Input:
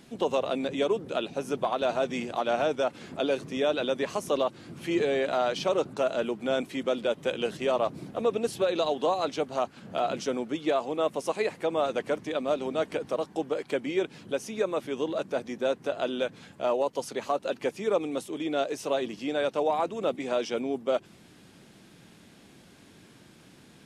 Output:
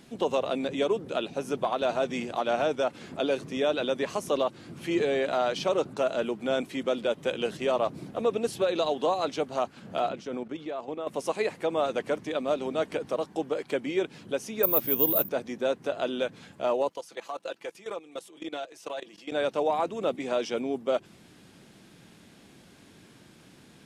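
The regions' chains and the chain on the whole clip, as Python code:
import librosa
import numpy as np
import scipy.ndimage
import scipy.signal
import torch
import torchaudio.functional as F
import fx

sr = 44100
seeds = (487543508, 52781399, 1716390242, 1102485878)

y = fx.chain(x, sr, fx.level_steps(step_db=11),
    fx.high_shelf(hz=5400.0, db=-11.5), at=(10.09, 11.07))
y = fx.chain(y, sr, fx.low_shelf(hz=190.0, db=7.0),
    fx.resample_bad(factor=3, down='none', up='zero_stuff'), at=(14.63, 15.29))
y = fx.chain(y, sr, fx.highpass(hz=590.0, slope=6),
    fx.comb(ms=6.0, depth=0.54),
    fx.level_steps(step_db=17), at=(16.89, 19.32))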